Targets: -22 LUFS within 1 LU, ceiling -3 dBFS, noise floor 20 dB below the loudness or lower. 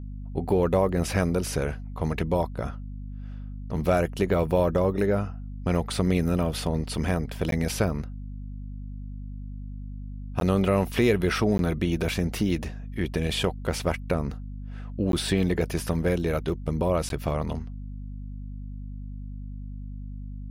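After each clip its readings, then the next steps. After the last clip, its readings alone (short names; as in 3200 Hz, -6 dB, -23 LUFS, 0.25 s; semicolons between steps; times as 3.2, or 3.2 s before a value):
dropouts 5; longest dropout 12 ms; hum 50 Hz; harmonics up to 250 Hz; hum level -34 dBFS; loudness -26.5 LUFS; peak -10.0 dBFS; loudness target -22.0 LUFS
-> interpolate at 7.51/10.4/11.58/15.12/17.09, 12 ms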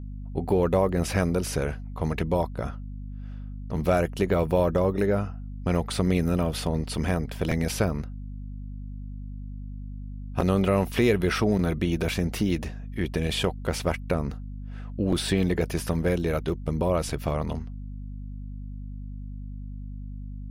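dropouts 0; hum 50 Hz; harmonics up to 250 Hz; hum level -34 dBFS
-> de-hum 50 Hz, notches 5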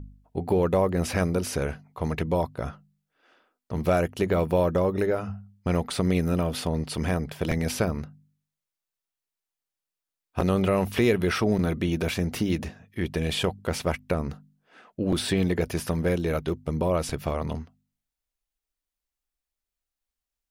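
hum none; loudness -27.0 LUFS; peak -10.5 dBFS; loudness target -22.0 LUFS
-> gain +5 dB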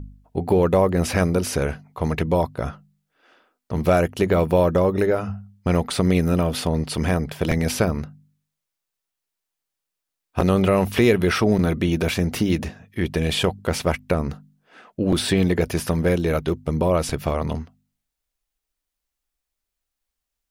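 loudness -22.0 LUFS; peak -5.5 dBFS; noise floor -83 dBFS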